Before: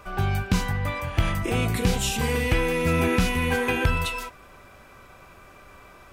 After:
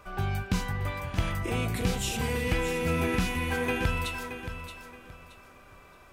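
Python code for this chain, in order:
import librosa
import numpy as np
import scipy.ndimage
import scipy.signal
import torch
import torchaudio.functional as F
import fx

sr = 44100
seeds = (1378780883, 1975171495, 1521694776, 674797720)

y = fx.echo_feedback(x, sr, ms=624, feedback_pct=28, wet_db=-10.0)
y = F.gain(torch.from_numpy(y), -5.5).numpy()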